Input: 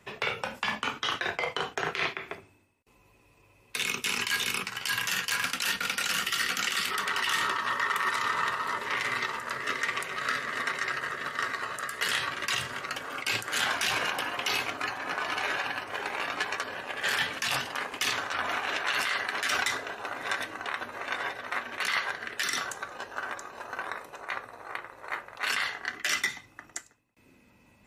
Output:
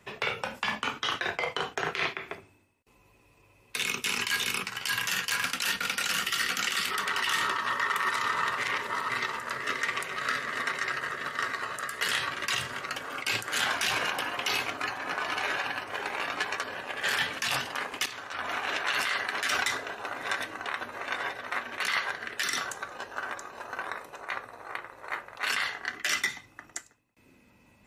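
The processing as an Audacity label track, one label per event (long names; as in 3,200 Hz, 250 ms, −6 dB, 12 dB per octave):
8.580000	9.100000	reverse
18.060000	18.670000	fade in, from −14 dB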